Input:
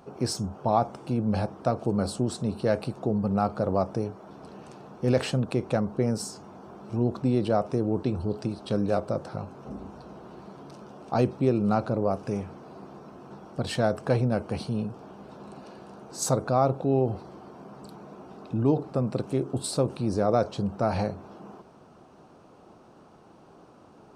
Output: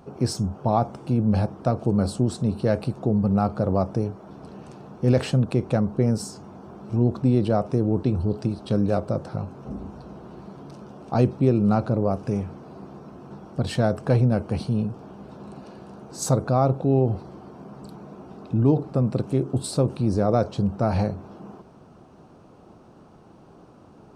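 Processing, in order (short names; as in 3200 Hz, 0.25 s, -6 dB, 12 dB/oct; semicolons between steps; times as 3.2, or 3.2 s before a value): low shelf 250 Hz +8.5 dB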